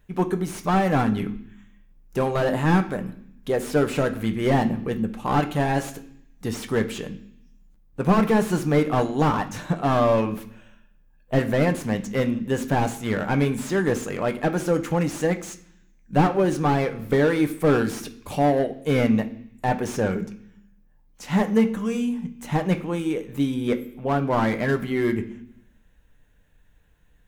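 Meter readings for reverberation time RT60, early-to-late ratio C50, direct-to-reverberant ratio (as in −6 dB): 0.65 s, 14.5 dB, 6.0 dB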